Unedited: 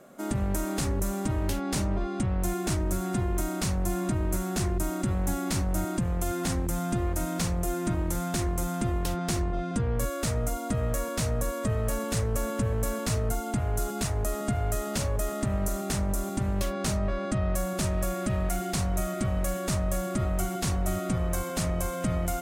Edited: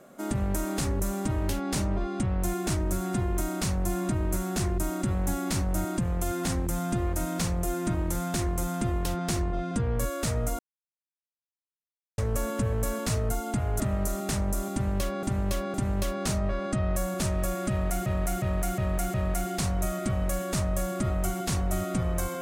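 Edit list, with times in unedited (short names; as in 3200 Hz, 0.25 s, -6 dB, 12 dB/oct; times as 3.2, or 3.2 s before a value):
10.59–12.18 mute
13.8–15.41 cut
16.33–16.84 loop, 3 plays
18.29–18.65 loop, 5 plays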